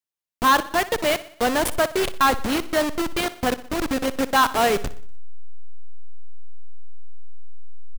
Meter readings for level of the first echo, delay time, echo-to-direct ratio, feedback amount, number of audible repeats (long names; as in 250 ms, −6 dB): −16.5 dB, 61 ms, −15.0 dB, 52%, 4